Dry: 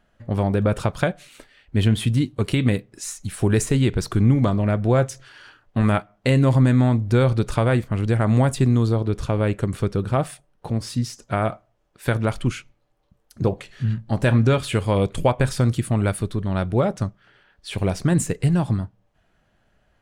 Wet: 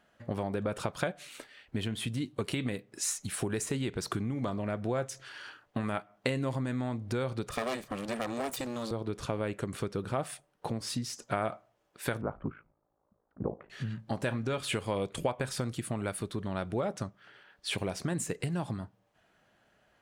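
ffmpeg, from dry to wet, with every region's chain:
ffmpeg -i in.wav -filter_complex "[0:a]asettb=1/sr,asplit=3[link_01][link_02][link_03];[link_01]atrim=end=7.494[link_04];[link_02]atrim=start=7.49:end=8.91,asetpts=PTS-STARTPTS,afade=type=in:duration=0.004:curve=qsin,afade=type=out:start_time=1.416:duration=0.004:curve=qsin,aecho=1:1:1.7:0.92,atrim=end_sample=62622,aeval=exprs='abs(val(0))':channel_layout=same,adynamicequalizer=threshold=0.0112:dfrequency=3300:dqfactor=0.7:tfrequency=3300:tqfactor=0.7:attack=5:release=100:ratio=0.375:range=2.5:mode=boostabove:tftype=highshelf[link_05];[link_03]atrim=start=8.906[link_06];[link_04][link_05]acrossfade=duration=0.004:curve1=hsin:curve2=qsin[link_07];[link_07][link_06]acrossfade=duration=0.004:curve1=qsin:curve2=hsin,asettb=1/sr,asplit=3[link_08][link_09][link_10];[link_08]atrim=end=12.214[link_11];[link_09]atrim=start=12.21:end=13.7,asetpts=PTS-STARTPTS,afade=type=in:duration=0.004:curve=qsin,afade=type=out:start_time=1.486:duration=0.004:curve=qsin,lowpass=frequency=1300:width=0.5412,lowpass=frequency=1300:width=1.3066,aeval=exprs='val(0)*sin(2*PI*27*n/s)':channel_layout=same[link_12];[link_10]atrim=start=13.696[link_13];[link_11][link_12]acrossfade=duration=0.004:curve1=hsin:curve2=qsin[link_14];[link_14][link_13]acrossfade=duration=0.004:curve1=qsin:curve2=hsin,acompressor=threshold=-25dB:ratio=6,highpass=frequency=280:poles=1" out.wav

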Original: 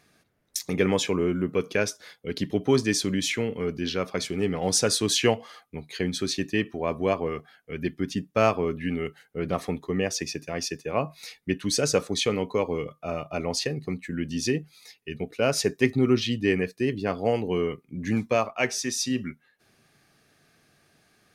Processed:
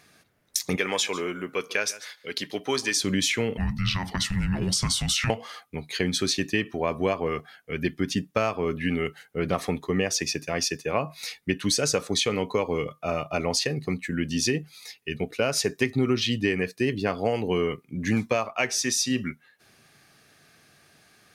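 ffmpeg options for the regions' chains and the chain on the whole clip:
ffmpeg -i in.wav -filter_complex "[0:a]asettb=1/sr,asplit=3[link_01][link_02][link_03];[link_01]atrim=end=0.764[link_04];[link_02]atrim=start=0.76:end=2.97,asetpts=PTS-STARTPTS,afade=type=in:duration=0.004:curve=qsin,afade=type=out:start_time=2.206:duration=0.004:curve=qsin,highpass=frequency=880:poles=1,aecho=1:1:144:0.106,atrim=end_sample=97461[link_05];[link_03]atrim=start=2.966[link_06];[link_04][link_05]acrossfade=duration=0.004:curve1=hsin:curve2=qsin[link_07];[link_07][link_06]acrossfade=duration=0.004:curve1=qsin:curve2=hsin,asettb=1/sr,asplit=3[link_08][link_09][link_10];[link_08]atrim=end=3.574[link_11];[link_09]atrim=start=3.57:end=5.3,asetpts=PTS-STARTPTS,afade=type=in:duration=0.004:curve=qsin,afade=type=out:start_time=1.726:duration=0.004:curve=qsin,acompressor=threshold=-25dB:ratio=4:attack=3.2:release=140:knee=1:detection=peak,highpass=frequency=170:width_type=q:width=1.7,afreqshift=-370[link_12];[link_10]atrim=start=5.296[link_13];[link_11][link_12]acrossfade=duration=0.004:curve1=hsin:curve2=qsin[link_14];[link_14][link_13]acrossfade=duration=0.004:curve1=qsin:curve2=hsin,lowshelf=frequency=450:gain=-10.5,acompressor=threshold=-28dB:ratio=6,equalizer=frequency=100:width=0.42:gain=6.5,volume=6.5dB" out.wav

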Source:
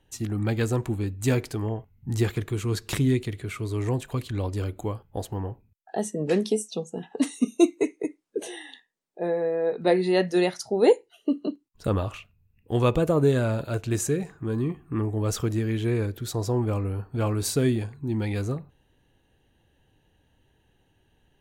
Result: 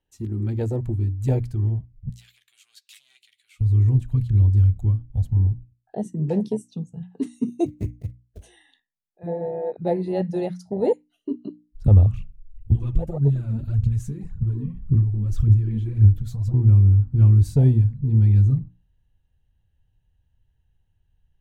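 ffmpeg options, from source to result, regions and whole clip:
ffmpeg -i in.wav -filter_complex "[0:a]asettb=1/sr,asplit=3[link_01][link_02][link_03];[link_01]atrim=end=2.094[link_04];[link_02]atrim=start=2.09:end=3.61,asetpts=PTS-STARTPTS,afade=type=in:duration=0.004:curve=qsin,afade=type=out:start_time=1.516:duration=0.004:curve=qsin,aeval=exprs='(tanh(12.6*val(0)+0.45)-tanh(0.45))/12.6':channel_layout=same,highpass=frequency=3000:width_type=q:width=1.6,asplit=2[link_05][link_06];[link_06]adelay=13,volume=-12.5dB[link_07];[link_05][link_07]amix=inputs=2:normalize=0,atrim=end_sample=67032[link_08];[link_03]atrim=start=3.606[link_09];[link_04][link_08]acrossfade=duration=0.004:curve1=hsin:curve2=qsin[link_10];[link_10][link_09]acrossfade=duration=0.004:curve1=qsin:curve2=hsin,asettb=1/sr,asplit=3[link_11][link_12][link_13];[link_11]atrim=end=7.664[link_14];[link_12]atrim=start=7.66:end=8.44,asetpts=PTS-STARTPTS,afade=type=in:duration=0.004:curve=qsin,afade=type=out:start_time=0.776:duration=0.004:curve=qsin,acrusher=bits=4:mode=log:mix=0:aa=0.000001,tremolo=f=200:d=0.857[link_15];[link_13]atrim=start=8.436[link_16];[link_14][link_15]acrossfade=duration=0.004:curve1=hsin:curve2=qsin[link_17];[link_17][link_16]acrossfade=duration=0.004:curve1=qsin:curve2=hsin,asettb=1/sr,asplit=3[link_18][link_19][link_20];[link_18]atrim=end=12.164[link_21];[link_19]atrim=start=12.16:end=16.54,asetpts=PTS-STARTPTS,afade=type=in:duration=0.004:curve=qsin,afade=type=out:start_time=4.376:duration=0.004:curve=qsin,acompressor=threshold=-31dB:ratio=3:attack=3.2:release=140:knee=1:detection=peak,aphaser=in_gain=1:out_gain=1:delay=4.6:decay=0.69:speed=1.8:type=triangular[link_22];[link_20]atrim=start=16.536[link_23];[link_21][link_22]acrossfade=duration=0.004:curve1=hsin:curve2=qsin[link_24];[link_24][link_23]acrossfade=duration=0.004:curve1=qsin:curve2=hsin,asubboost=boost=12:cutoff=94,afwtdn=0.0891,bandreject=frequency=60:width_type=h:width=6,bandreject=frequency=120:width_type=h:width=6,bandreject=frequency=180:width_type=h:width=6,bandreject=frequency=240:width_type=h:width=6,bandreject=frequency=300:width_type=h:width=6,volume=1.5dB" out.wav

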